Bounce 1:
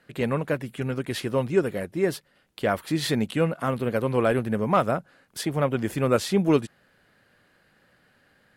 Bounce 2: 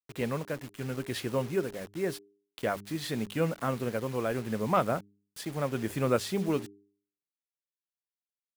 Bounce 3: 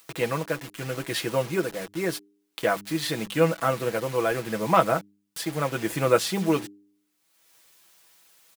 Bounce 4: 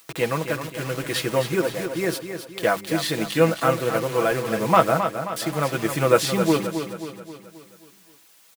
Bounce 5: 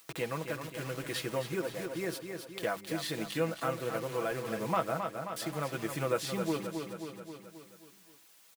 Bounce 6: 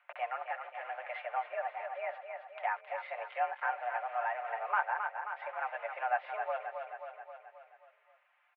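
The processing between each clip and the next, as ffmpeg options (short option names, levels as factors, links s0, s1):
-af "tremolo=f=0.83:d=0.42,acrusher=bits=6:mix=0:aa=0.000001,bandreject=f=100.7:t=h:w=4,bandreject=f=201.4:t=h:w=4,bandreject=f=302.1:t=h:w=4,bandreject=f=402.8:t=h:w=4,volume=0.596"
-af "lowshelf=f=270:g=-9,aecho=1:1:6.1:0.63,acompressor=mode=upward:threshold=0.00891:ratio=2.5,volume=2.24"
-af "aecho=1:1:266|532|798|1064|1330|1596:0.376|0.188|0.094|0.047|0.0235|0.0117,volume=1.41"
-af "acompressor=threshold=0.0178:ratio=1.5,volume=0.501"
-af "highpass=f=360:t=q:w=0.5412,highpass=f=360:t=q:w=1.307,lowpass=f=2200:t=q:w=0.5176,lowpass=f=2200:t=q:w=0.7071,lowpass=f=2200:t=q:w=1.932,afreqshift=240"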